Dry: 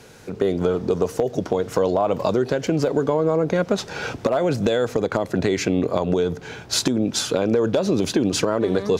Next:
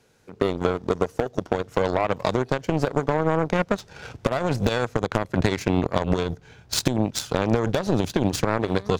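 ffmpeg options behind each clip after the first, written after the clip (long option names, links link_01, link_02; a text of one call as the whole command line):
ffmpeg -i in.wav -af "asubboost=boost=3.5:cutoff=140,aeval=exprs='0.596*(cos(1*acos(clip(val(0)/0.596,-1,1)))-cos(1*PI/2))+0.0335*(cos(5*acos(clip(val(0)/0.596,-1,1)))-cos(5*PI/2))+0.0944*(cos(7*acos(clip(val(0)/0.596,-1,1)))-cos(7*PI/2))':channel_layout=same" out.wav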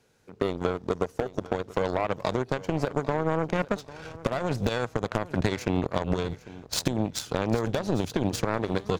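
ffmpeg -i in.wav -af "aecho=1:1:798|1596:0.126|0.029,volume=-4.5dB" out.wav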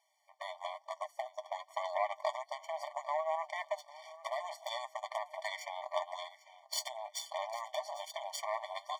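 ffmpeg -i in.wav -af "flanger=delay=6.1:depth=1.9:regen=46:speed=1.1:shape=sinusoidal,afftfilt=real='re*eq(mod(floor(b*sr/1024/600),2),1)':imag='im*eq(mod(floor(b*sr/1024/600),2),1)':win_size=1024:overlap=0.75" out.wav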